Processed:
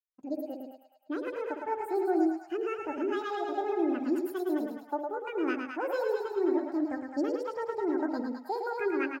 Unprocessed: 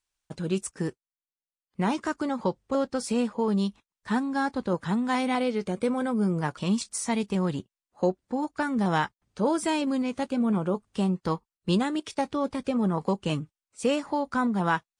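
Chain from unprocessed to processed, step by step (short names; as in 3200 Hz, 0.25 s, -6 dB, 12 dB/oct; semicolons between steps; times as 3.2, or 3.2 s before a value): low shelf 91 Hz +5 dB; split-band echo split 440 Hz, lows 95 ms, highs 0.343 s, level -4 dB; wide varispeed 1.63×; echo 0.109 s -4 dB; spectral expander 1.5:1; gain -6.5 dB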